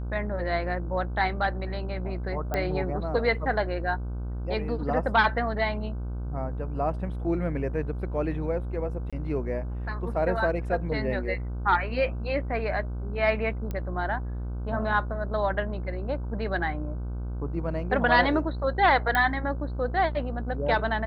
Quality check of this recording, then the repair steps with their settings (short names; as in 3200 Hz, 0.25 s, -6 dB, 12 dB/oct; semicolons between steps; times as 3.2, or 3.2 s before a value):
buzz 60 Hz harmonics 26 -32 dBFS
2.54 pop -15 dBFS
9.1–9.13 gap 26 ms
13.71 pop -20 dBFS
19.15 pop -12 dBFS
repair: de-click; de-hum 60 Hz, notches 26; interpolate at 9.1, 26 ms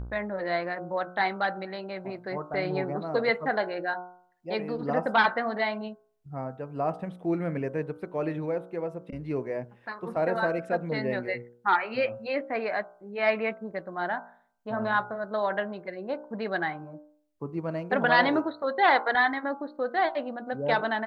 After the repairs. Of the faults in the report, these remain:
none